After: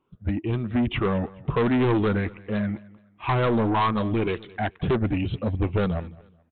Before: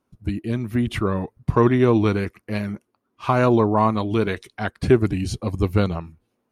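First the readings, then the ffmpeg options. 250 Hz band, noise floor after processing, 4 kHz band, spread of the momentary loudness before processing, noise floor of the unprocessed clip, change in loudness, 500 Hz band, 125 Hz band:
-3.5 dB, -59 dBFS, -1.0 dB, 12 LU, -74 dBFS, -3.5 dB, -5.0 dB, -3.0 dB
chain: -af "afftfilt=real='re*pow(10,10/40*sin(2*PI*(0.69*log(max(b,1)*sr/1024/100)/log(2)-(2.1)*(pts-256)/sr)))':imag='im*pow(10,10/40*sin(2*PI*(0.69*log(max(b,1)*sr/1024/100)/log(2)-(2.1)*(pts-256)/sr)))':win_size=1024:overlap=0.75,aresample=8000,asoftclip=type=tanh:threshold=0.126,aresample=44100,aecho=1:1:214|428:0.0841|0.0244"

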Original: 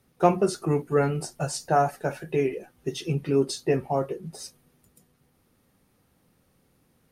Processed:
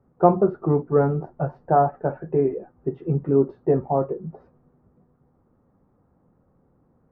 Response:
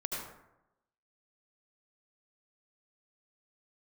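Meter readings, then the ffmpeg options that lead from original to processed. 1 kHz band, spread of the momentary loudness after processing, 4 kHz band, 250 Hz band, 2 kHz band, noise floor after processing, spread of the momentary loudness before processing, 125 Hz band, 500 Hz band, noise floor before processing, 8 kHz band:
+3.5 dB, 11 LU, under -35 dB, +4.0 dB, -6.5 dB, -64 dBFS, 11 LU, +4.0 dB, +4.0 dB, -67 dBFS, under -40 dB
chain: -af "lowpass=f=1200:w=0.5412,lowpass=f=1200:w=1.3066,volume=1.58"

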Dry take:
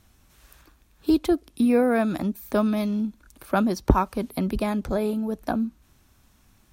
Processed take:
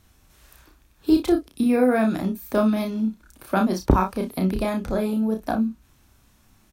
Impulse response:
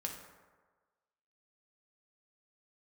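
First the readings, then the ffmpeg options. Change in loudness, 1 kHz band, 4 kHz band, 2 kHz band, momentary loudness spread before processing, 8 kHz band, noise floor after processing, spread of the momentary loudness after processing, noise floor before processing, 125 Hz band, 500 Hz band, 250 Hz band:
+1.5 dB, +1.5 dB, +1.5 dB, +1.5 dB, 8 LU, +1.5 dB, -59 dBFS, 7 LU, -61 dBFS, +2.0 dB, +1.5 dB, +2.0 dB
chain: -af "aecho=1:1:32|59:0.631|0.211"

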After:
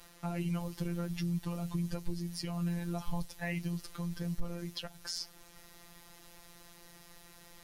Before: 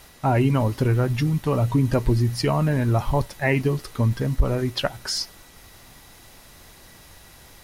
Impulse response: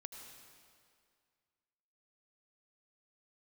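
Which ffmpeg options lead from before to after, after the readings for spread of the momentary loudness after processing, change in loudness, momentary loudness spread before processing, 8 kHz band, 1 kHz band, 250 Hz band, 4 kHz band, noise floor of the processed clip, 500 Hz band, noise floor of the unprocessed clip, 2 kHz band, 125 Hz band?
19 LU, -15.0 dB, 5 LU, -10.5 dB, -19.0 dB, -12.0 dB, -12.0 dB, -57 dBFS, -20.0 dB, -49 dBFS, -15.5 dB, -16.5 dB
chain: -filter_complex "[0:a]acrossover=split=130|3000[s0][s1][s2];[s1]acompressor=threshold=0.0178:ratio=2.5[s3];[s0][s3][s2]amix=inputs=3:normalize=0,afftfilt=real='hypot(re,im)*cos(PI*b)':imag='0':win_size=1024:overlap=0.75,alimiter=limit=0.141:level=0:latency=1:release=313,volume=0.596"

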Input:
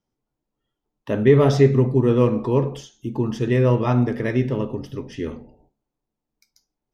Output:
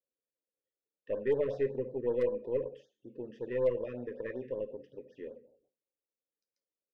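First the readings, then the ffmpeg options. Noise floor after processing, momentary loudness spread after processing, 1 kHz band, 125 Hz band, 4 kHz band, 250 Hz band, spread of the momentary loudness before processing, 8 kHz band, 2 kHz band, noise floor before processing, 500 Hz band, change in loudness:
under -85 dBFS, 16 LU, -23.0 dB, -29.0 dB, under -20 dB, -22.0 dB, 16 LU, no reading, -16.5 dB, -83 dBFS, -11.5 dB, -15.0 dB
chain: -filter_complex "[0:a]asplit=3[s0][s1][s2];[s0]bandpass=f=530:t=q:w=8,volume=1[s3];[s1]bandpass=f=1840:t=q:w=8,volume=0.501[s4];[s2]bandpass=f=2480:t=q:w=8,volume=0.355[s5];[s3][s4][s5]amix=inputs=3:normalize=0,tiltshelf=f=820:g=3.5,aeval=exprs='0.178*(cos(1*acos(clip(val(0)/0.178,-1,1)))-cos(1*PI/2))+0.0112*(cos(4*acos(clip(val(0)/0.178,-1,1)))-cos(4*PI/2))':c=same,afftfilt=real='re*(1-between(b*sr/1024,680*pow(2600/680,0.5+0.5*sin(2*PI*5.3*pts/sr))/1.41,680*pow(2600/680,0.5+0.5*sin(2*PI*5.3*pts/sr))*1.41))':imag='im*(1-between(b*sr/1024,680*pow(2600/680,0.5+0.5*sin(2*PI*5.3*pts/sr))/1.41,680*pow(2600/680,0.5+0.5*sin(2*PI*5.3*pts/sr))*1.41))':win_size=1024:overlap=0.75,volume=0.562"

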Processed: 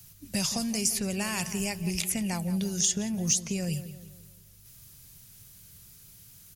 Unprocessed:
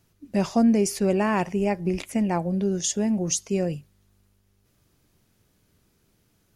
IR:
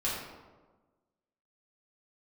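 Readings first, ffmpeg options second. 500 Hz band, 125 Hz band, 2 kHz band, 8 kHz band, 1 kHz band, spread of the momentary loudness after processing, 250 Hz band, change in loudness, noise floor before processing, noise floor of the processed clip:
-13.0 dB, -3.5 dB, -2.0 dB, +3.0 dB, -11.0 dB, 8 LU, -7.5 dB, -4.5 dB, -67 dBFS, -54 dBFS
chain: -filter_complex "[0:a]crystalizer=i=9.5:c=0,acrossover=split=140|3200[s0][s1][s2];[s0]acompressor=threshold=0.00398:ratio=4[s3];[s1]acompressor=threshold=0.0251:ratio=4[s4];[s2]acompressor=threshold=0.0501:ratio=4[s5];[s3][s4][s5]amix=inputs=3:normalize=0,lowshelf=f=200:t=q:w=1.5:g=10,asplit=2[s6][s7];[s7]asoftclip=type=tanh:threshold=0.168,volume=0.562[s8];[s6][s8]amix=inputs=2:normalize=0,asplit=2[s9][s10];[s10]adelay=173,lowpass=f=2500:p=1,volume=0.251,asplit=2[s11][s12];[s12]adelay=173,lowpass=f=2500:p=1,volume=0.47,asplit=2[s13][s14];[s14]adelay=173,lowpass=f=2500:p=1,volume=0.47,asplit=2[s15][s16];[s16]adelay=173,lowpass=f=2500:p=1,volume=0.47,asplit=2[s17][s18];[s18]adelay=173,lowpass=f=2500:p=1,volume=0.47[s19];[s9][s11][s13][s15][s17][s19]amix=inputs=6:normalize=0,volume=0.501"

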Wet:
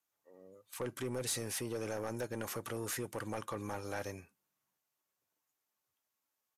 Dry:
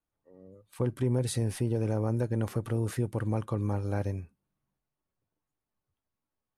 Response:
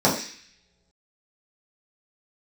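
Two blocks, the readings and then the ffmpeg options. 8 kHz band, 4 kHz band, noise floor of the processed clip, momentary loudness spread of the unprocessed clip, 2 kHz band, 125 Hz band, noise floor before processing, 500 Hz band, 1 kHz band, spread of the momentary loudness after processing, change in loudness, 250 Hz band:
+3.0 dB, +1.5 dB, under -85 dBFS, 5 LU, +1.5 dB, -17.5 dB, under -85 dBFS, -6.0 dB, -2.5 dB, 10 LU, -8.5 dB, -10.5 dB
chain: -filter_complex "[0:a]highpass=f=1100:p=1,acrossover=split=3900[s0][s1];[s1]aexciter=amount=1:drive=8.3:freq=5700[s2];[s0][s2]amix=inputs=2:normalize=0,asoftclip=type=tanh:threshold=0.015,aresample=32000,aresample=44100,volume=1.78"

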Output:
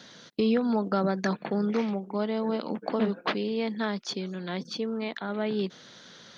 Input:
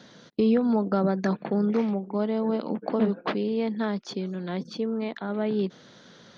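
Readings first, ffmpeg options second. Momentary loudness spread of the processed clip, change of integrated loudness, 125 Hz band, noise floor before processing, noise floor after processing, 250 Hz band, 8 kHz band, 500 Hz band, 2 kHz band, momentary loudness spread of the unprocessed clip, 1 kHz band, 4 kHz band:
8 LU, -2.5 dB, -3.5 dB, -53 dBFS, -51 dBFS, -3.0 dB, no reading, -2.5 dB, +2.5 dB, 9 LU, 0.0 dB, +4.5 dB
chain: -af "tiltshelf=f=1200:g=-4.5,volume=1.12"

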